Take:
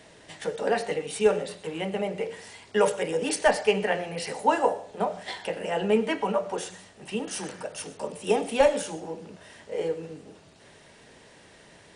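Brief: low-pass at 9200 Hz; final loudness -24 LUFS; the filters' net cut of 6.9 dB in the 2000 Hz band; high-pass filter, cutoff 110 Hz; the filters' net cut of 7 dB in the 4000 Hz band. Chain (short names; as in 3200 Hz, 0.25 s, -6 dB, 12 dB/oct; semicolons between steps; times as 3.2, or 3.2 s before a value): HPF 110 Hz; LPF 9200 Hz; bell 2000 Hz -7 dB; bell 4000 Hz -7 dB; gain +4.5 dB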